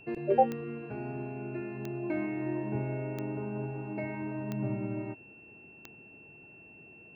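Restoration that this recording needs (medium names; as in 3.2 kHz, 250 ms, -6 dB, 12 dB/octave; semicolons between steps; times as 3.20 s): de-click; band-stop 2.7 kHz, Q 30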